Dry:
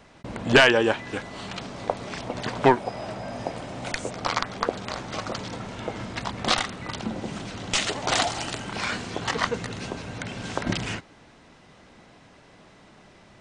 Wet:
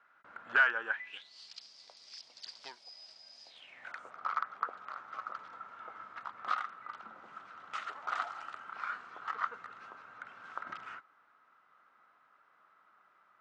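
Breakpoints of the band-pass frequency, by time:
band-pass, Q 7.8
0.88 s 1400 Hz
1.34 s 4900 Hz
3.44 s 4900 Hz
3.94 s 1300 Hz

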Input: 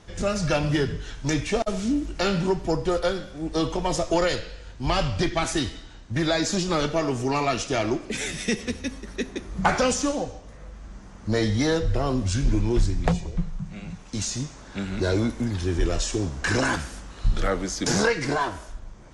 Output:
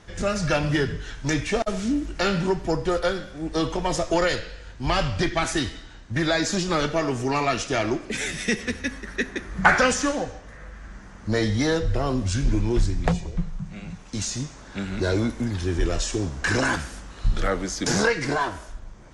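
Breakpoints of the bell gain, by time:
bell 1700 Hz 0.8 oct
8.35 s +4.5 dB
8.91 s +12 dB
10.85 s +12 dB
11.44 s +2 dB

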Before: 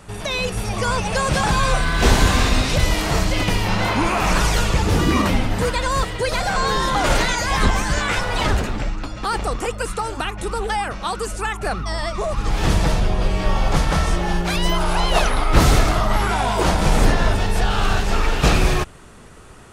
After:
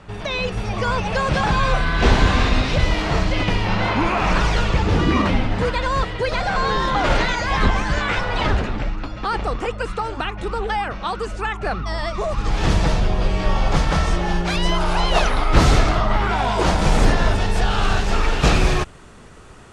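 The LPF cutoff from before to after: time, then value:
11.69 s 4000 Hz
12.37 s 6800 Hz
15.71 s 6800 Hz
16.2 s 3500 Hz
16.74 s 8100 Hz

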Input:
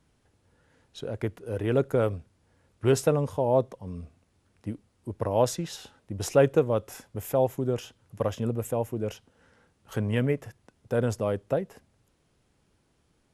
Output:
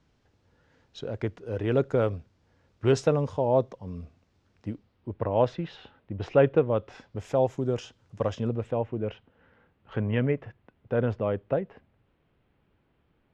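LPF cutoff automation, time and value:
LPF 24 dB/oct
4.68 s 6200 Hz
5.12 s 3300 Hz
6.72 s 3300 Hz
7.38 s 6800 Hz
8.26 s 6800 Hz
8.85 s 3100 Hz

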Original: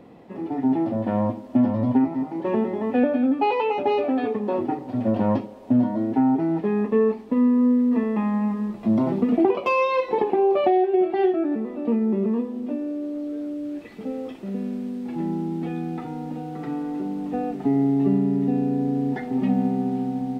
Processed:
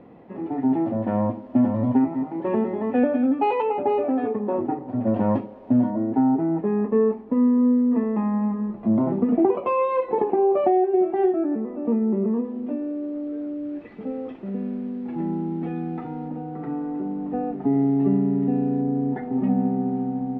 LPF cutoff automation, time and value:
2300 Hz
from 3.62 s 1500 Hz
from 5.07 s 2200 Hz
from 5.9 s 1400 Hz
from 12.44 s 2100 Hz
from 16.28 s 1500 Hz
from 17.73 s 2000 Hz
from 18.81 s 1400 Hz

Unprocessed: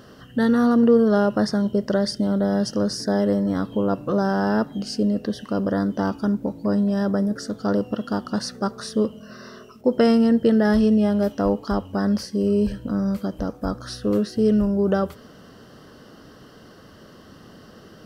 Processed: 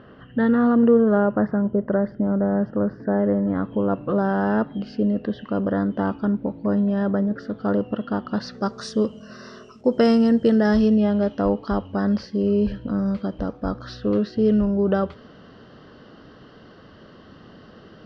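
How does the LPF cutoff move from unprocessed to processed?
LPF 24 dB/oct
0.82 s 2800 Hz
1.53 s 1700 Hz
3 s 1700 Hz
4.16 s 3200 Hz
8.26 s 3200 Hz
8.86 s 7500 Hz
10.63 s 7500 Hz
11.07 s 4200 Hz

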